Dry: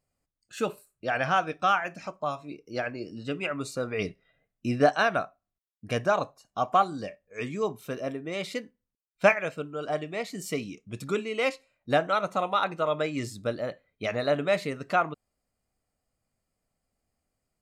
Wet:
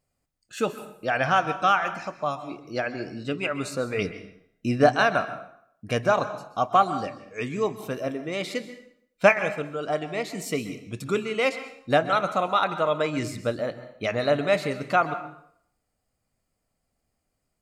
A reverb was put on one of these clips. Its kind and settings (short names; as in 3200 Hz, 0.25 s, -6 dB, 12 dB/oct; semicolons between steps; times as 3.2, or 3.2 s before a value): plate-style reverb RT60 0.67 s, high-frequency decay 0.8×, pre-delay 0.115 s, DRR 11.5 dB; gain +3 dB